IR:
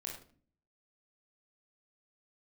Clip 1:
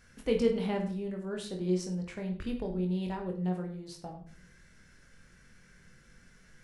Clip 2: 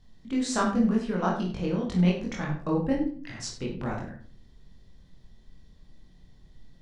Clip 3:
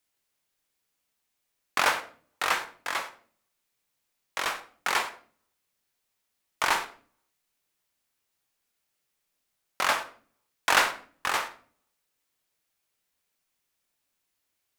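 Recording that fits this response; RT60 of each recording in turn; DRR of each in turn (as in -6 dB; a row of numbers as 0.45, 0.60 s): 2; 0.45, 0.45, 0.45 s; 2.0, -2.5, 8.0 dB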